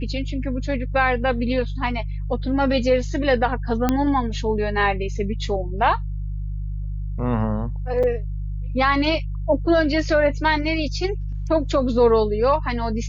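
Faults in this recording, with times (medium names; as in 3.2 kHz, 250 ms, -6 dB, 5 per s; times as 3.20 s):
hum 50 Hz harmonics 3 -27 dBFS
3.89 s: pop -6 dBFS
8.03–8.04 s: dropout 5.8 ms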